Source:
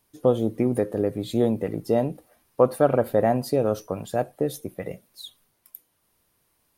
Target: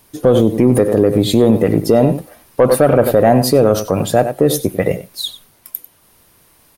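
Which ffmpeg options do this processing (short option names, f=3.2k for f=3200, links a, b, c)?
-filter_complex "[0:a]acontrast=80,asplit=2[a][b];[b]aecho=0:1:95:0.188[c];[a][c]amix=inputs=2:normalize=0,alimiter=level_in=11.5dB:limit=-1dB:release=50:level=0:latency=1,volume=-1dB"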